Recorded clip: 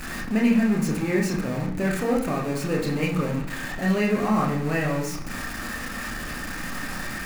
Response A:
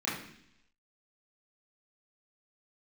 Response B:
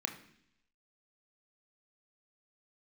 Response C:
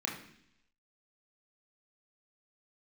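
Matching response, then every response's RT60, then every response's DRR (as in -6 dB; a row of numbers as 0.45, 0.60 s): C; 0.70, 0.70, 0.70 s; -10.0, 3.5, -2.5 dB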